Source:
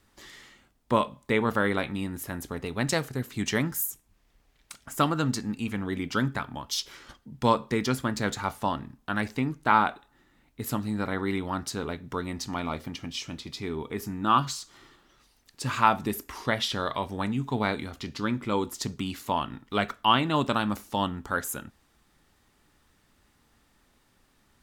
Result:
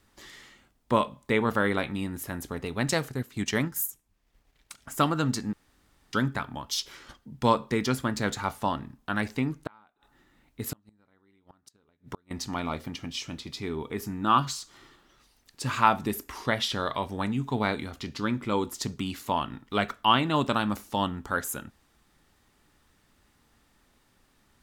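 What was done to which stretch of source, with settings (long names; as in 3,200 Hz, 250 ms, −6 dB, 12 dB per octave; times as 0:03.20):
0:03.10–0:04.78: transient designer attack −1 dB, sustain −7 dB
0:05.53–0:06.13: fill with room tone
0:09.66–0:12.31: gate with flip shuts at −22 dBFS, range −36 dB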